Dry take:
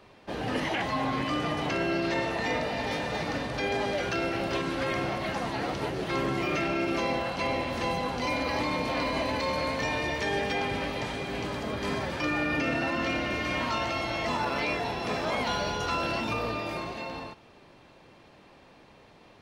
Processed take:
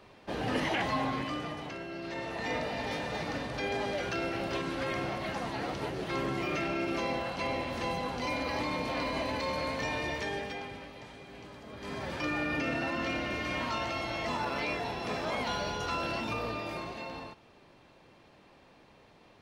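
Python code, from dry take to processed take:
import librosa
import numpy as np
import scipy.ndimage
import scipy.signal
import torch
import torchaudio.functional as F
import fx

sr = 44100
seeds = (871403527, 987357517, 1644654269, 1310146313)

y = fx.gain(x, sr, db=fx.line((0.93, -1.0), (1.88, -13.5), (2.54, -4.0), (10.15, -4.0), (10.89, -15.0), (11.65, -15.0), (12.11, -4.0)))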